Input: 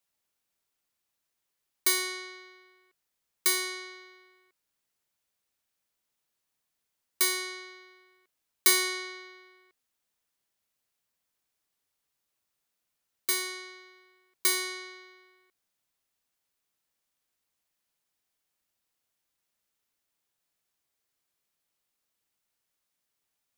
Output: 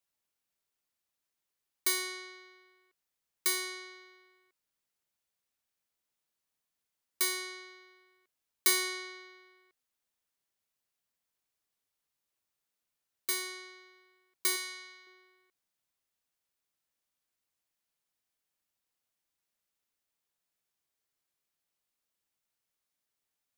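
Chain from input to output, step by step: 14.56–15.07 s: peaking EQ 400 Hz -10 dB 2 oct; trim -4.5 dB

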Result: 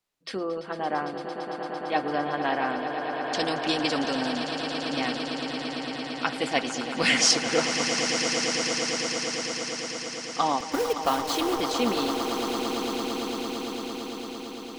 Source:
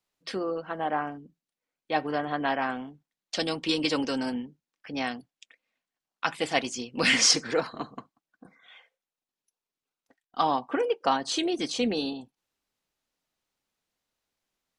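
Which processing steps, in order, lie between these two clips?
10.60–11.61 s: send-on-delta sampling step -30.5 dBFS; on a send: echo with a slow build-up 113 ms, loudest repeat 8, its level -11 dB

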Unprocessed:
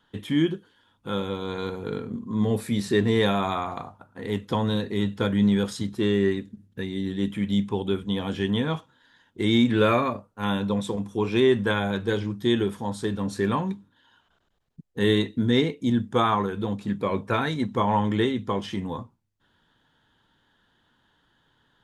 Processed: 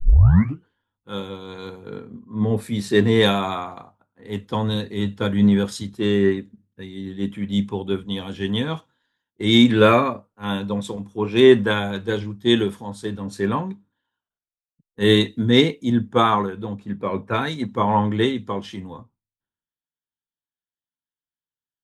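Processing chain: tape start-up on the opening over 0.66 s; three bands expanded up and down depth 100%; trim +2.5 dB

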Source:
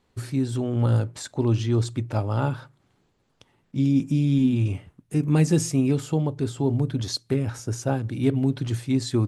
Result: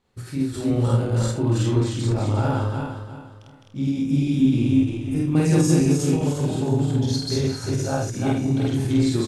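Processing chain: backward echo that repeats 176 ms, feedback 55%, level 0 dB; doubling 49 ms -8.5 dB; early reflections 26 ms -8.5 dB, 49 ms -3.5 dB, 79 ms -7 dB; endings held to a fixed fall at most 120 dB/s; trim -4 dB

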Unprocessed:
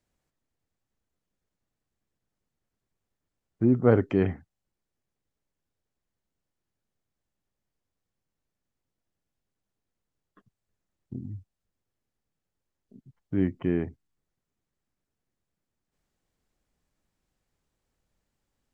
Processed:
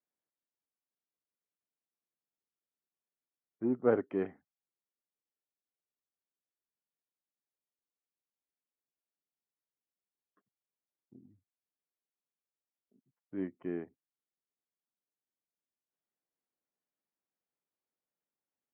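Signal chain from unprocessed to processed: in parallel at -8 dB: saturation -19 dBFS, distortion -10 dB; on the sum: band-pass 270–2200 Hz; upward expansion 1.5:1, over -38 dBFS; trim -6 dB

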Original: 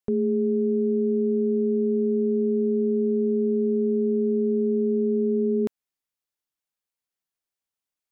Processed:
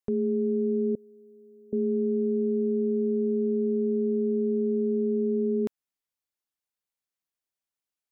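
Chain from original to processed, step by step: 0.95–1.73 s: differentiator; trim -3 dB

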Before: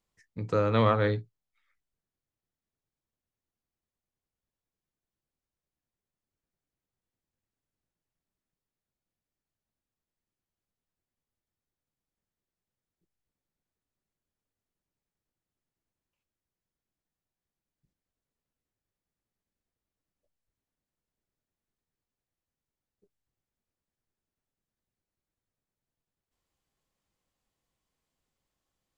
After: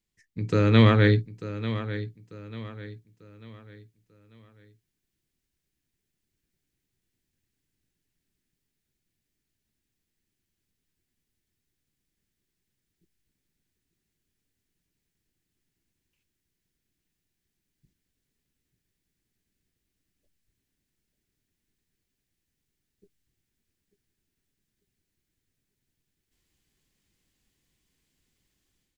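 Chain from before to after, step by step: high-order bell 810 Hz -11 dB; level rider gain up to 10 dB; feedback delay 893 ms, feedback 38%, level -13 dB

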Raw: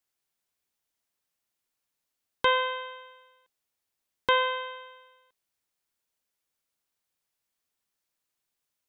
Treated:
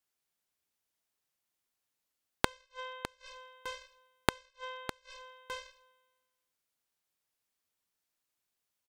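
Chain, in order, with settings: Chebyshev shaper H 7 -15 dB, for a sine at -10 dBFS; feedback delay 606 ms, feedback 16%, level -11.5 dB; inverted gate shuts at -26 dBFS, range -38 dB; trim +10 dB

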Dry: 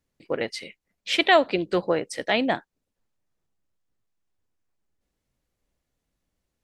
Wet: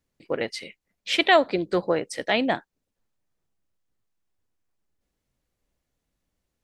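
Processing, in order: 1.36–1.96 s: peaking EQ 2.8 kHz -10 dB 0.31 oct

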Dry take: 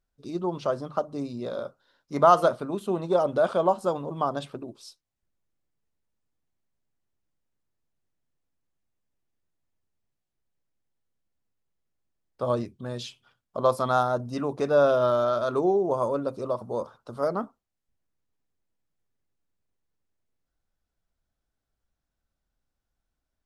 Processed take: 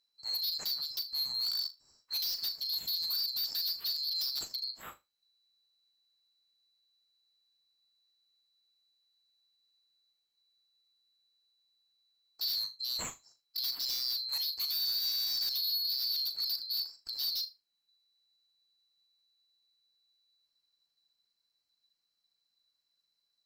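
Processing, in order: split-band scrambler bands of 4 kHz; compression 10:1, threshold -26 dBFS, peak gain reduction 14.5 dB; wavefolder -28.5 dBFS; flutter echo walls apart 6.7 m, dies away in 0.21 s

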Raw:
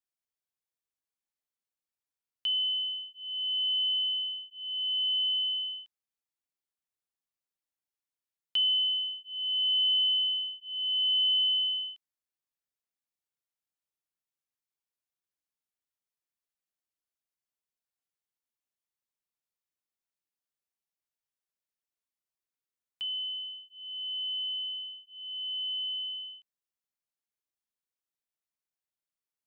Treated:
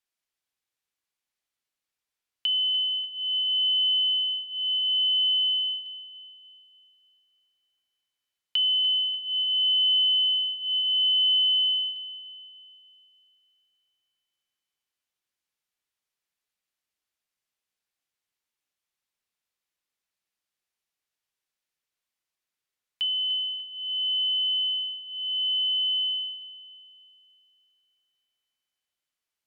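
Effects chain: low-pass that closes with the level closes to 2.6 kHz, closed at -30.5 dBFS; peaking EQ 2.8 kHz +6 dB 2.4 oct; in parallel at +1 dB: peak limiter -25.5 dBFS, peak gain reduction 9 dB; on the sum: filtered feedback delay 295 ms, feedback 73%, low-pass 2.7 kHz, level -12 dB; on a send at -23 dB: reverberation RT60 1.1 s, pre-delay 3 ms; on the sum: trim -3.5 dB

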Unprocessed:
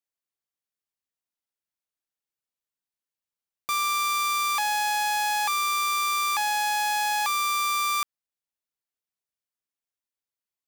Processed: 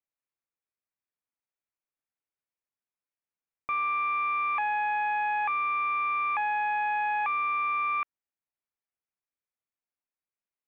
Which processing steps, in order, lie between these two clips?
elliptic low-pass 2.5 kHz, stop band 60 dB; trim -1.5 dB

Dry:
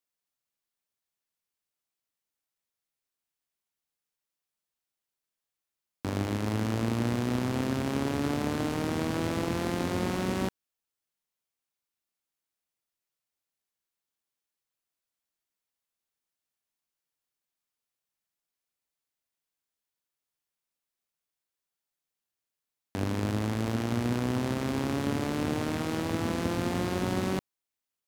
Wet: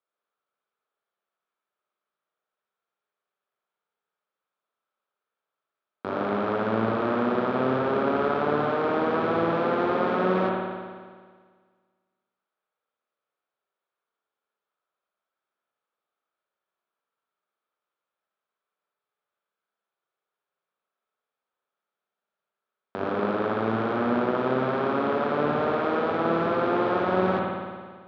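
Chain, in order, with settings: cabinet simulation 250–3200 Hz, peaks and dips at 290 Hz -8 dB, 420 Hz +4 dB, 600 Hz +4 dB, 1.3 kHz +8 dB, 2 kHz -7 dB, 2.8 kHz -7 dB; spring tank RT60 1.7 s, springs 54 ms, chirp 40 ms, DRR -2 dB; trim +3.5 dB

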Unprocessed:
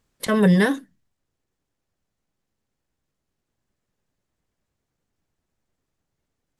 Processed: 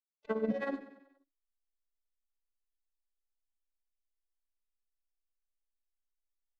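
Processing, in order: vocoder on a broken chord major triad, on A3, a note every 503 ms; low-pass 3.8 kHz; expander -35 dBFS; comb 2 ms, depth 92%; reverse; compression, threshold -28 dBFS, peak gain reduction 12.5 dB; reverse; harmony voices +5 st -16 dB; in parallel at -5 dB: hysteresis with a dead band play -42.5 dBFS; on the sum: transient shaper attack +4 dB, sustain -6 dB; tremolo 16 Hz, depth 75%; feedback delay 95 ms, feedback 52%, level -14.5 dB; trim -5 dB

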